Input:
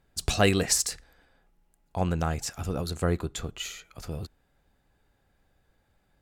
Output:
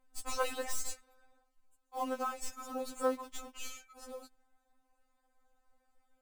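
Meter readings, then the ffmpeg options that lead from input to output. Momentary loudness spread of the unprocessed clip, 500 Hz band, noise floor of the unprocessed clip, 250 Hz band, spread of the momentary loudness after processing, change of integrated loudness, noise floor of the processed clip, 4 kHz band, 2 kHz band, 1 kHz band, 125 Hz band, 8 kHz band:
16 LU, -7.5 dB, -70 dBFS, -13.5 dB, 14 LU, -10.5 dB, -77 dBFS, -14.5 dB, -11.0 dB, -4.0 dB, under -30 dB, -12.5 dB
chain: -filter_complex "[0:a]equalizer=f=250:t=o:w=1:g=-7,equalizer=f=1k:t=o:w=1:g=5,equalizer=f=4k:t=o:w=1:g=-4,equalizer=f=8k:t=o:w=1:g=8,acrossover=split=1600[a][b];[a]acrusher=bits=5:mode=log:mix=0:aa=0.000001[c];[b]aeval=exprs='(tanh(39.8*val(0)+0.7)-tanh(0.7))/39.8':c=same[d];[c][d]amix=inputs=2:normalize=0,lowshelf=f=310:g=4,afftfilt=real='re*3.46*eq(mod(b,12),0)':imag='im*3.46*eq(mod(b,12),0)':win_size=2048:overlap=0.75,volume=-4dB"

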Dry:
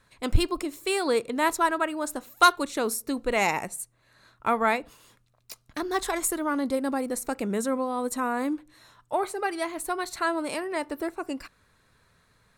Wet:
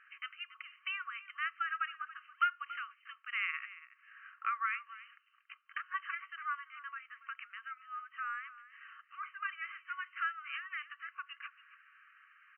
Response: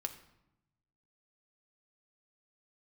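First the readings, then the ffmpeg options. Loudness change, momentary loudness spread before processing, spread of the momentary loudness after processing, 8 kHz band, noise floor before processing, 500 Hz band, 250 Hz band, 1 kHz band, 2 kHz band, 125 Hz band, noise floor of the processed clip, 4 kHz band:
-12.5 dB, 10 LU, 17 LU, under -40 dB, -66 dBFS, under -40 dB, under -40 dB, -12.5 dB, -6.5 dB, under -40 dB, -69 dBFS, -13.5 dB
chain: -filter_complex "[0:a]acompressor=threshold=-45dB:ratio=2,asplit=2[a][b];[b]aecho=0:1:281:0.158[c];[a][c]amix=inputs=2:normalize=0,afftfilt=real='re*between(b*sr/4096,1100,3100)':imag='im*between(b*sr/4096,1100,3100)':win_size=4096:overlap=0.75,volume=6.5dB"

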